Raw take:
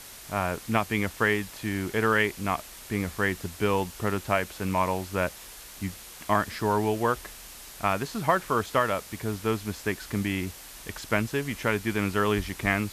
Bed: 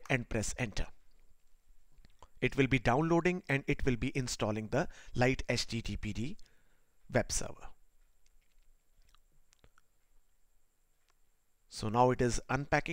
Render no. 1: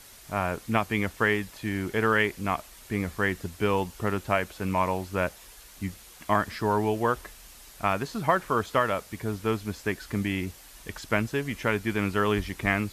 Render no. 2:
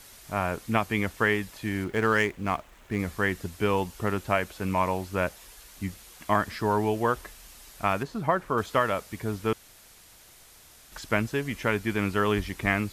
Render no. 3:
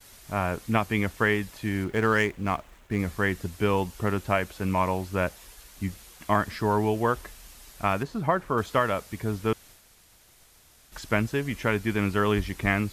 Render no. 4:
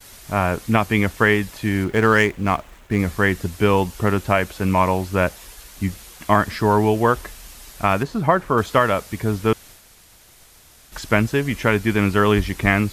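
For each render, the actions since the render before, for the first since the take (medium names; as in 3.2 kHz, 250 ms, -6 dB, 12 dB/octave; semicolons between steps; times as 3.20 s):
noise reduction 6 dB, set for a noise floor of -45 dBFS
1.84–2.99 s: median filter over 9 samples; 8.03–8.58 s: treble shelf 2 kHz -9 dB; 9.53–10.92 s: room tone
expander -48 dBFS; bass shelf 220 Hz +3.5 dB
trim +7.5 dB; peak limiter -3 dBFS, peak gain reduction 2 dB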